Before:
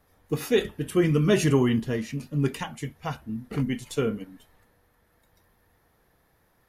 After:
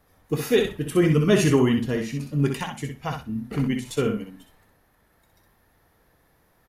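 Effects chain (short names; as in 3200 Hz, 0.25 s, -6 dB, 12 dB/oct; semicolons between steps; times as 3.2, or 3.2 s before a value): feedback echo 63 ms, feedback 16%, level -6 dB; gain +2 dB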